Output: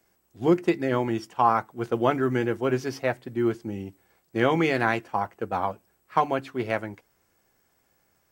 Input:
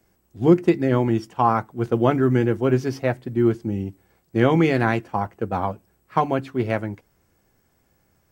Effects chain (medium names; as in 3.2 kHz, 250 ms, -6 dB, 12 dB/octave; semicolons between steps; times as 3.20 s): bass shelf 330 Hz -11 dB